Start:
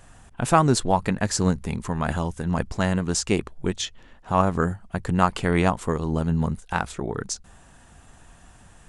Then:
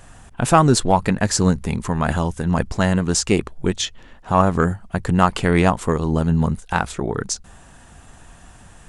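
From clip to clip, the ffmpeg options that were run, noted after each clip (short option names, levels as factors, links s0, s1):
-af "acontrast=35"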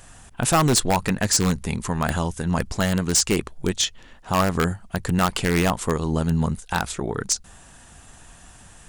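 -filter_complex "[0:a]highshelf=f=2600:g=7.5,asplit=2[s0][s1];[s1]aeval=exprs='(mod(2.11*val(0)+1,2)-1)/2.11':c=same,volume=0.562[s2];[s0][s2]amix=inputs=2:normalize=0,volume=0.422"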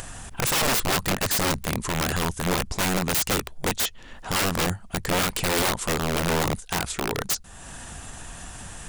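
-af "aeval=exprs='(mod(7.5*val(0)+1,2)-1)/7.5':c=same,acompressor=mode=upward:threshold=0.0355:ratio=2.5"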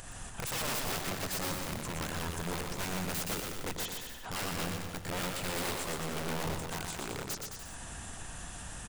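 -filter_complex "[0:a]alimiter=level_in=1.06:limit=0.0631:level=0:latency=1:release=77,volume=0.944,asplit=2[s0][s1];[s1]aecho=0:1:120|216|292.8|354.2|403.4:0.631|0.398|0.251|0.158|0.1[s2];[s0][s2]amix=inputs=2:normalize=0,volume=0.473"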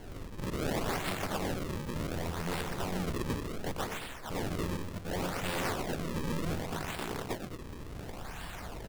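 -af "acrusher=samples=35:mix=1:aa=0.000001:lfo=1:lforange=56:lforate=0.68,volume=1.19"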